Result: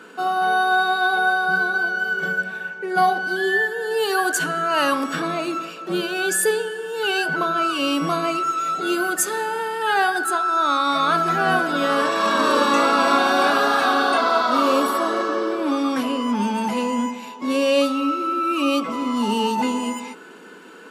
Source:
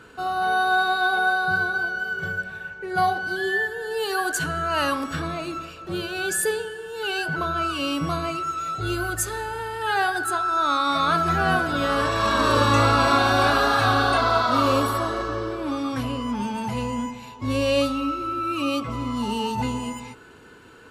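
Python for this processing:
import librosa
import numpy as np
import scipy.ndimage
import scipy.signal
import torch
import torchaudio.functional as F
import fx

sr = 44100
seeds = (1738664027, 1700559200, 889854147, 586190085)

p1 = scipy.signal.sosfilt(scipy.signal.ellip(4, 1.0, 40, 180.0, 'highpass', fs=sr, output='sos'), x)
p2 = fx.notch(p1, sr, hz=4100.0, q=21.0)
p3 = fx.rider(p2, sr, range_db=4, speed_s=0.5)
p4 = p2 + F.gain(torch.from_numpy(p3), 0.0).numpy()
y = F.gain(torch.from_numpy(p4), -2.0).numpy()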